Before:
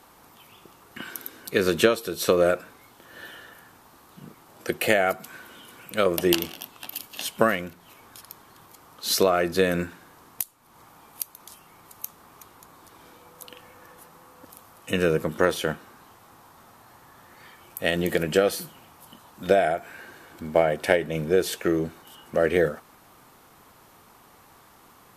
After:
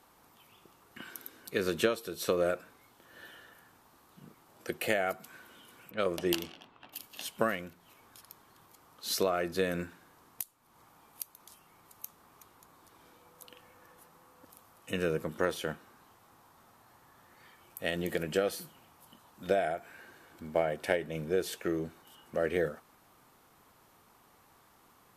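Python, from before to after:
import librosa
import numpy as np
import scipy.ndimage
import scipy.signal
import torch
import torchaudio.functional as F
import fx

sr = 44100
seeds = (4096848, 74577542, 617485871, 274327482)

y = fx.env_lowpass(x, sr, base_hz=1700.0, full_db=-16.5, at=(5.9, 6.92), fade=0.02)
y = y * 10.0 ** (-9.0 / 20.0)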